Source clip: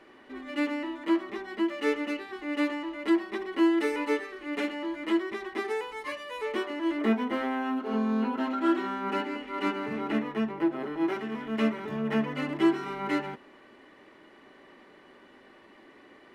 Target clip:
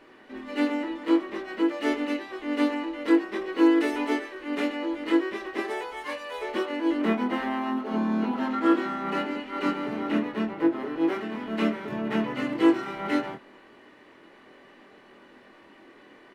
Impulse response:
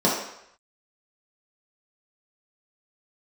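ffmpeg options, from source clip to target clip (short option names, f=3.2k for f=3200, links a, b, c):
-filter_complex "[0:a]asplit=4[a][b][c][d];[b]asetrate=37084,aresample=44100,atempo=1.18921,volume=-10dB[e];[c]asetrate=58866,aresample=44100,atempo=0.749154,volume=-16dB[f];[d]asetrate=66075,aresample=44100,atempo=0.66742,volume=-16dB[g];[a][e][f][g]amix=inputs=4:normalize=0,asplit=2[h][i];[i]adelay=24,volume=-5dB[j];[h][j]amix=inputs=2:normalize=0"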